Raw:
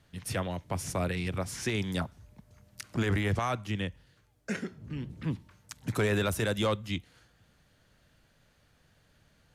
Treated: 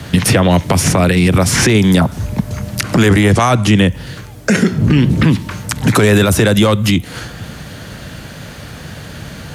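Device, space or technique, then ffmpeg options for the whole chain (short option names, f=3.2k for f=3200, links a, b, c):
mastering chain: -filter_complex "[0:a]asettb=1/sr,asplit=3[a][b][c];[a]atrim=end=3.084[d];[b]atrim=start=3.08:end=3.79,asetpts=PTS-STARTPTS,afade=t=in:d=0.004:c=qsin,afade=t=out:st=0.706:d=0.004:c=qsin,lowpass=f=11k:w=0.5412,lowpass=f=11k:w=1.3066[e];[c]atrim=start=3.786[f];[d][e]acrossfade=d=0.004:c1=hsin:c2=qsin[g];[g][f]acrossfade=d=0.004:c1=qsin:c2=hsin,highpass=48,equalizer=f=180:t=o:w=1.9:g=4,acrossover=split=190|1200|3100|7800[h][i][j][k][l];[h]acompressor=threshold=-44dB:ratio=4[m];[i]acompressor=threshold=-41dB:ratio=4[n];[j]acompressor=threshold=-50dB:ratio=4[o];[k]acompressor=threshold=-55dB:ratio=4[p];[l]acompressor=threshold=-57dB:ratio=4[q];[m][n][o][p][q]amix=inputs=5:normalize=0,acompressor=threshold=-42dB:ratio=1.5,alimiter=level_in=35dB:limit=-1dB:release=50:level=0:latency=1,volume=-1dB"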